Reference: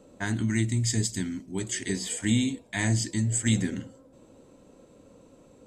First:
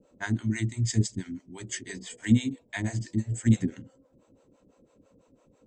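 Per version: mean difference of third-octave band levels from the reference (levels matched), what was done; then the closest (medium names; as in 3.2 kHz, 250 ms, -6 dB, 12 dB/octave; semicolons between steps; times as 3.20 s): 6.5 dB: low-pass 7.4 kHz 24 dB/octave; harmonic tremolo 6 Hz, depth 100%, crossover 480 Hz; peaking EQ 4.1 kHz -3.5 dB 0.77 oct; upward expansion 1.5:1, over -39 dBFS; trim +6.5 dB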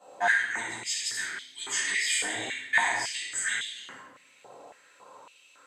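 12.0 dB: octave divider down 1 oct, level 0 dB; compression, threshold -28 dBFS, peak gain reduction 12 dB; simulated room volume 600 m³, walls mixed, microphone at 8.4 m; step-sequenced high-pass 3.6 Hz 740–3400 Hz; trim -8 dB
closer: first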